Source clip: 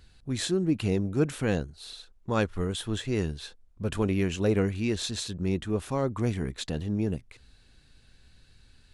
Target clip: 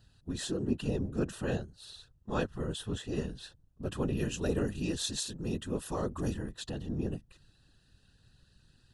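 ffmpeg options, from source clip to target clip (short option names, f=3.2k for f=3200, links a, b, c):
-filter_complex "[0:a]asettb=1/sr,asplit=3[a][b][c];[a]atrim=end=4.174[d];[b]atrim=start=4.17:end=6.33,asetpts=PTS-STARTPTS,afade=t=in:d=0.004:c=qsin,afade=t=out:st=2.156:d=0.004:c=qsin,highshelf=f=5.4k:g=9.5[e];[c]atrim=start=6.326[f];[d][e]acrossfade=d=0.004:c1=hsin:c2=qsin[g];[g][f]acrossfade=d=0.004:c1=qsin:c2=hsin,afftfilt=real='hypot(re,im)*cos(2*PI*random(0))':imag='hypot(re,im)*sin(2*PI*random(1))':win_size=512:overlap=0.75,asuperstop=centerf=2200:order=8:qfactor=4.6"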